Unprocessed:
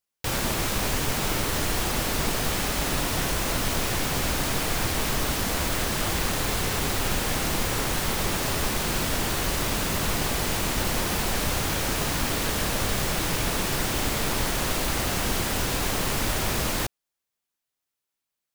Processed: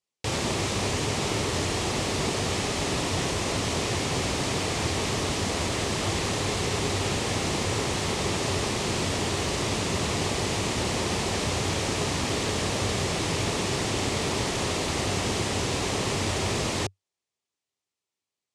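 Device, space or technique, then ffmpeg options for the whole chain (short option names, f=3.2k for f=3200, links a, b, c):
car door speaker: -af "highpass=81,equalizer=f=96:t=q:w=4:g=7,equalizer=f=400:t=q:w=4:g=5,equalizer=f=1.5k:t=q:w=4:g=-7,lowpass=f=8.5k:w=0.5412,lowpass=f=8.5k:w=1.3066"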